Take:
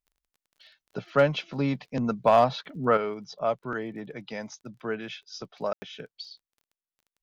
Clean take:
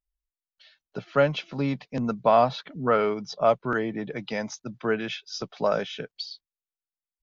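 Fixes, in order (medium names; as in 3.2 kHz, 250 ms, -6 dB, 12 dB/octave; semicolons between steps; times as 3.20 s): clip repair -10.5 dBFS; de-click; room tone fill 5.73–5.82 s; trim 0 dB, from 2.97 s +6 dB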